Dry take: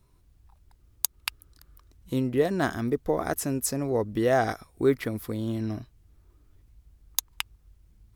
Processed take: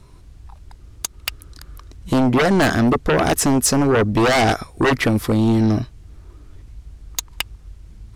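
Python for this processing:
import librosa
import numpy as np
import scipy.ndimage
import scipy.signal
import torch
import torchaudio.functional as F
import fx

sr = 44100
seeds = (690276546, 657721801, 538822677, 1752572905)

p1 = scipy.signal.sosfilt(scipy.signal.butter(2, 8700.0, 'lowpass', fs=sr, output='sos'), x)
p2 = fx.fold_sine(p1, sr, drive_db=18, ceiling_db=-7.5)
p3 = p1 + F.gain(torch.from_numpy(p2), -8.0).numpy()
y = F.gain(torch.from_numpy(p3), 1.5).numpy()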